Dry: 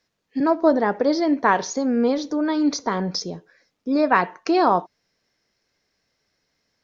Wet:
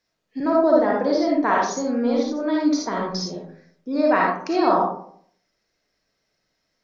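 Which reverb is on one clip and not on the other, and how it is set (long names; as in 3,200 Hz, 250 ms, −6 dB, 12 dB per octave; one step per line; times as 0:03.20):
comb and all-pass reverb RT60 0.61 s, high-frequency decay 0.4×, pre-delay 15 ms, DRR −2.5 dB
level −5 dB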